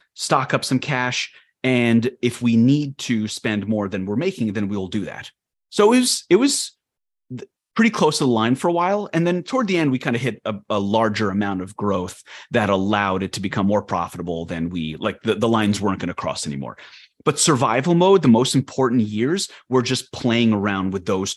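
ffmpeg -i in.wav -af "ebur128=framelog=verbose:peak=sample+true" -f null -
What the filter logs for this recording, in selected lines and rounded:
Integrated loudness:
  I:         -20.1 LUFS
  Threshold: -30.5 LUFS
Loudness range:
  LRA:         4.2 LU
  Threshold: -40.5 LUFS
  LRA low:   -22.5 LUFS
  LRA high:  -18.3 LUFS
Sample peak:
  Peak:       -1.8 dBFS
True peak:
  Peak:       -1.7 dBFS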